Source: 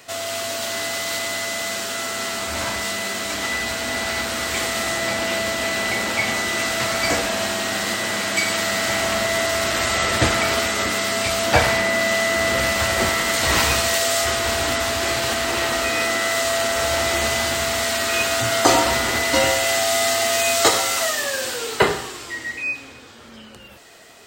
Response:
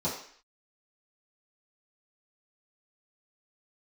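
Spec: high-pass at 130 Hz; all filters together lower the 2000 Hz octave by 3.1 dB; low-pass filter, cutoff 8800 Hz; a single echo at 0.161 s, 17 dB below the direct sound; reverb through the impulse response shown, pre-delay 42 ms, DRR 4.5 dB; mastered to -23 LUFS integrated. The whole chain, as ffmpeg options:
-filter_complex "[0:a]highpass=130,lowpass=8.8k,equalizer=f=2k:t=o:g=-3.5,aecho=1:1:161:0.141,asplit=2[a][b];[1:a]atrim=start_sample=2205,adelay=42[c];[b][c]afir=irnorm=-1:irlink=0,volume=-12dB[d];[a][d]amix=inputs=2:normalize=0,volume=-3dB"

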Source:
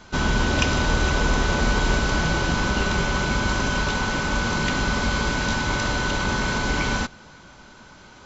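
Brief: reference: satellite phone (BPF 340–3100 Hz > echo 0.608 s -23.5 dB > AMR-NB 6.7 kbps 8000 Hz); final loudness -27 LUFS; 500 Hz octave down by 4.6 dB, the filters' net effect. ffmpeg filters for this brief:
-af "highpass=340,lowpass=3.1k,equalizer=f=500:t=o:g=-4.5,aecho=1:1:608:0.0668,volume=2.5dB" -ar 8000 -c:a libopencore_amrnb -b:a 6700

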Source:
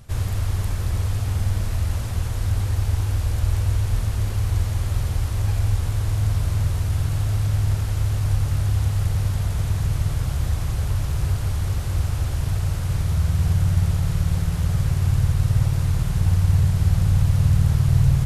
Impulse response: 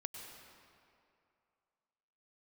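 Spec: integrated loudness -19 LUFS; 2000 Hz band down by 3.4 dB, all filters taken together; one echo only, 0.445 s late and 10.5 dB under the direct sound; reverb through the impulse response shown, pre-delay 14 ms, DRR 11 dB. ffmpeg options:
-filter_complex "[0:a]equalizer=f=2k:t=o:g=-4.5,aecho=1:1:445:0.299,asplit=2[a][b];[1:a]atrim=start_sample=2205,adelay=14[c];[b][c]afir=irnorm=-1:irlink=0,volume=-9dB[d];[a][d]amix=inputs=2:normalize=0,volume=3.5dB"

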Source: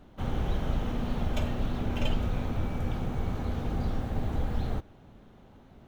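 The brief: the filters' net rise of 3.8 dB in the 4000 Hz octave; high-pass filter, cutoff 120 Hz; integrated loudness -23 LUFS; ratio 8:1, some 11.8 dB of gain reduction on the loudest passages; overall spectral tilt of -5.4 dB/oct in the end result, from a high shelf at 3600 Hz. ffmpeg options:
-af "highpass=120,highshelf=f=3.6k:g=-4.5,equalizer=f=4k:t=o:g=8,acompressor=threshold=-42dB:ratio=8,volume=23dB"

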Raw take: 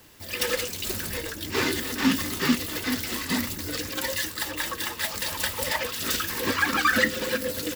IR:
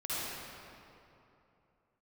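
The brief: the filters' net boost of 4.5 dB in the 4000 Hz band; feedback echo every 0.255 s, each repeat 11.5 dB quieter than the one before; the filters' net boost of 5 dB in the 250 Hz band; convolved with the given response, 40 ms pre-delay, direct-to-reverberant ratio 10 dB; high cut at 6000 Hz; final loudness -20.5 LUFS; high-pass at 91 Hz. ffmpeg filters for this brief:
-filter_complex "[0:a]highpass=91,lowpass=6k,equalizer=f=250:t=o:g=5.5,equalizer=f=4k:t=o:g=6.5,aecho=1:1:255|510|765:0.266|0.0718|0.0194,asplit=2[a][b];[1:a]atrim=start_sample=2205,adelay=40[c];[b][c]afir=irnorm=-1:irlink=0,volume=-16dB[d];[a][d]amix=inputs=2:normalize=0,volume=3dB"

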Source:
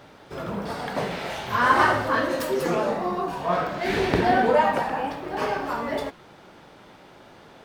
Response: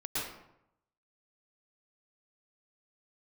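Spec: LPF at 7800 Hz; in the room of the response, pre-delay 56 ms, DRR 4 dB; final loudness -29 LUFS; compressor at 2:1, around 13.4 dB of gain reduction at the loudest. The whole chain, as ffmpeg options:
-filter_complex "[0:a]lowpass=7.8k,acompressor=threshold=-40dB:ratio=2,asplit=2[a][b];[1:a]atrim=start_sample=2205,adelay=56[c];[b][c]afir=irnorm=-1:irlink=0,volume=-9dB[d];[a][d]amix=inputs=2:normalize=0,volume=4.5dB"

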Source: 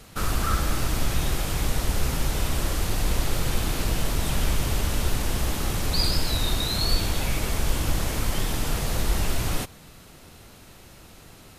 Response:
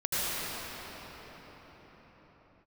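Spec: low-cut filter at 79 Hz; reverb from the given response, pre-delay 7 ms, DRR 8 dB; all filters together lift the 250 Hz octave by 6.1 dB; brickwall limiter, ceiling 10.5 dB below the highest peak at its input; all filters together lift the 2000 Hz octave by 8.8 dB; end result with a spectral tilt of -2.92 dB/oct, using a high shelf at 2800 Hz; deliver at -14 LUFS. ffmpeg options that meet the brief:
-filter_complex "[0:a]highpass=79,equalizer=f=250:t=o:g=8,equalizer=f=2k:t=o:g=7.5,highshelf=f=2.8k:g=8,alimiter=limit=-17.5dB:level=0:latency=1,asplit=2[a][b];[1:a]atrim=start_sample=2205,adelay=7[c];[b][c]afir=irnorm=-1:irlink=0,volume=-20dB[d];[a][d]amix=inputs=2:normalize=0,volume=11dB"

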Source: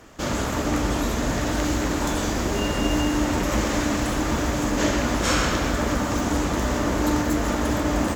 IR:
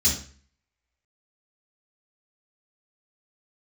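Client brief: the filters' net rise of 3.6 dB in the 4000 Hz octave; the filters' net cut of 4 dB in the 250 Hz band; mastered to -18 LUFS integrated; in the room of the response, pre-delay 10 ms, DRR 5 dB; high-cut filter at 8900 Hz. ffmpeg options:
-filter_complex "[0:a]lowpass=8.9k,equalizer=f=250:t=o:g=-5,equalizer=f=4k:t=o:g=5,asplit=2[a][b];[1:a]atrim=start_sample=2205,adelay=10[c];[b][c]afir=irnorm=-1:irlink=0,volume=-15.5dB[d];[a][d]amix=inputs=2:normalize=0,volume=2dB"

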